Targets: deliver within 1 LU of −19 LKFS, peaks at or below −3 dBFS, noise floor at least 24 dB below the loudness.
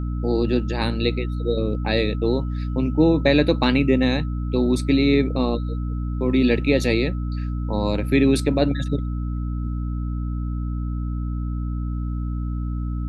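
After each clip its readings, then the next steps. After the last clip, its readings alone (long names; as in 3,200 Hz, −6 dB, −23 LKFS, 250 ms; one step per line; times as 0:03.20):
mains hum 60 Hz; hum harmonics up to 300 Hz; level of the hum −23 dBFS; interfering tone 1,300 Hz; level of the tone −45 dBFS; integrated loudness −22.5 LKFS; sample peak −4.5 dBFS; target loudness −19.0 LKFS
→ mains-hum notches 60/120/180/240/300 Hz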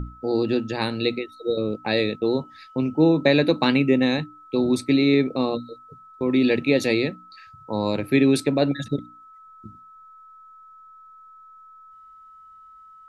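mains hum none found; interfering tone 1,300 Hz; level of the tone −45 dBFS
→ notch filter 1,300 Hz, Q 30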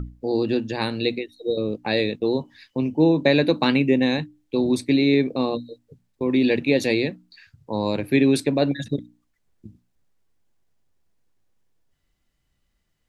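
interfering tone none found; integrated loudness −22.5 LKFS; sample peak −5.5 dBFS; target loudness −19.0 LKFS
→ level +3.5 dB
brickwall limiter −3 dBFS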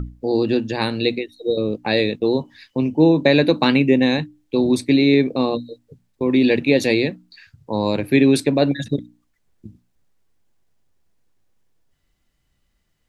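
integrated loudness −19.0 LKFS; sample peak −3.0 dBFS; background noise floor −69 dBFS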